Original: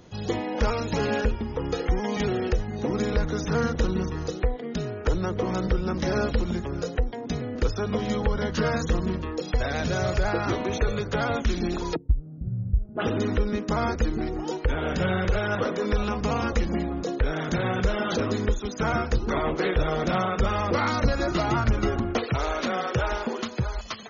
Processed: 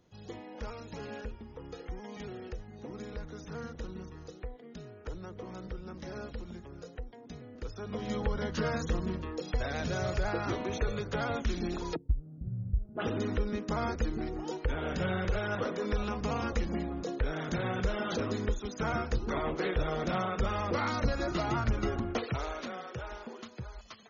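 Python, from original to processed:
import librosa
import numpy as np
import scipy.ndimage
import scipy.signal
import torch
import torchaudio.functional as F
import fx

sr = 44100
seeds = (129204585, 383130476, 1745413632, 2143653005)

y = fx.gain(x, sr, db=fx.line((7.62, -16.5), (8.16, -7.0), (22.28, -7.0), (22.86, -15.0)))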